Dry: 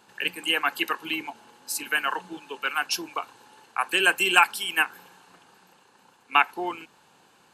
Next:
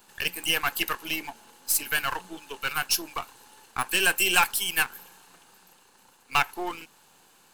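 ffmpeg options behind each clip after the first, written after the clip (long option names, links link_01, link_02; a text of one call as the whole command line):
ffmpeg -i in.wav -af "aeval=exprs='if(lt(val(0),0),0.447*val(0),val(0))':channel_layout=same,aemphasis=mode=production:type=50kf,asoftclip=type=tanh:threshold=-10.5dB" out.wav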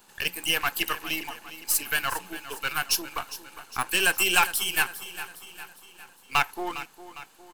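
ffmpeg -i in.wav -af "aecho=1:1:406|812|1218|1624|2030:0.2|0.102|0.0519|0.0265|0.0135" out.wav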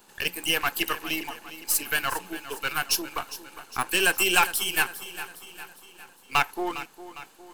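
ffmpeg -i in.wav -af "equalizer=frequency=370:width=0.88:gain=4,areverse,acompressor=mode=upward:threshold=-46dB:ratio=2.5,areverse" out.wav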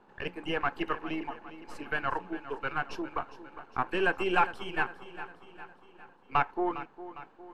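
ffmpeg -i in.wav -af "lowpass=1300" out.wav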